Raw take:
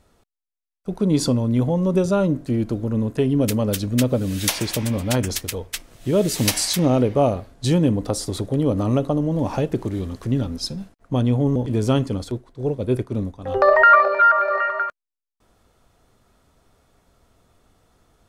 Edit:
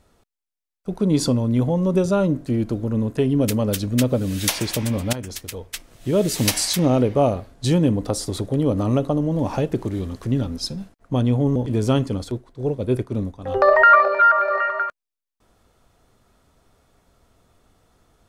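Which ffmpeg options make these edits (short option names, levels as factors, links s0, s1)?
-filter_complex "[0:a]asplit=2[s0][s1];[s0]atrim=end=5.13,asetpts=PTS-STARTPTS,afade=t=out:st=5.126:d=0.004:c=hsin:silence=0.251189[s2];[s1]atrim=start=5.13,asetpts=PTS-STARTPTS,afade=t=in:d=1.37:c=qsin:silence=0.251189[s3];[s2][s3]concat=n=2:v=0:a=1"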